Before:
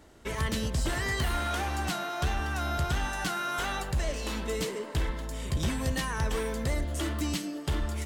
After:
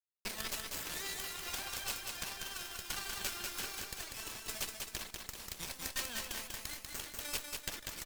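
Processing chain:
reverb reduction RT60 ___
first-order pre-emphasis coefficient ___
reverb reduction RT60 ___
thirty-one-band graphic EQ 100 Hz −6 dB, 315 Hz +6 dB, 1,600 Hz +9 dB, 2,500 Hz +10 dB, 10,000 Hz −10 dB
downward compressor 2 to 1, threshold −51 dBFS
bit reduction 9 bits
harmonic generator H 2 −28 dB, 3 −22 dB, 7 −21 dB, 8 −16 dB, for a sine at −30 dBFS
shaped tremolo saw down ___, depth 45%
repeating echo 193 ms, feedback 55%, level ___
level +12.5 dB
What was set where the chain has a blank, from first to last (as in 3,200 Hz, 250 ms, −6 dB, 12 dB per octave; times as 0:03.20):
1.7 s, 0.97, 1.7 s, 0.69 Hz, −4 dB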